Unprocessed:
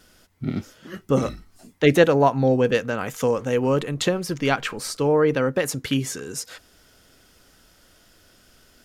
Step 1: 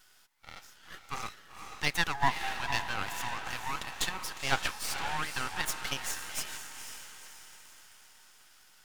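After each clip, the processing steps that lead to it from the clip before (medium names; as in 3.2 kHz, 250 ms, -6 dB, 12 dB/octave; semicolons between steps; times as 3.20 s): elliptic high-pass 790 Hz, stop band 40 dB; echo that smears into a reverb 493 ms, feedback 49%, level -7 dB; half-wave rectifier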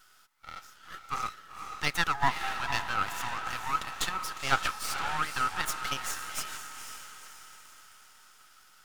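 peaking EQ 1.3 kHz +12.5 dB 0.21 oct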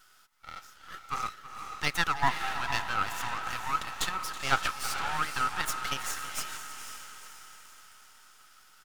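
delay 324 ms -15.5 dB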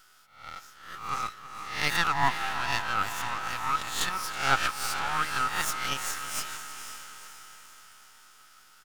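reverse spectral sustain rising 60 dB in 0.54 s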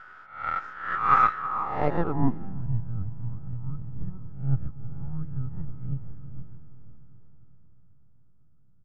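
in parallel at -12 dB: sample-rate reducer 4.7 kHz; on the sum: low-pass sweep 1.6 kHz -> 130 Hz, 1.37–2.69 s; trim +6.5 dB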